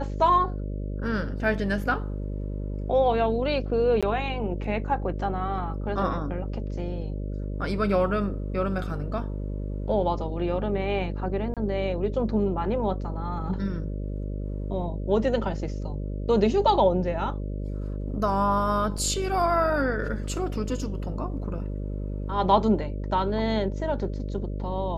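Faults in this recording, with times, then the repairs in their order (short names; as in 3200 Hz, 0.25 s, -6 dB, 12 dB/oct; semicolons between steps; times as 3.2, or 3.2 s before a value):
buzz 50 Hz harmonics 12 -31 dBFS
4.01–4.03 gap 16 ms
11.54–11.57 gap 27 ms
18.98 gap 4.2 ms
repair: de-hum 50 Hz, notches 12; interpolate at 4.01, 16 ms; interpolate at 11.54, 27 ms; interpolate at 18.98, 4.2 ms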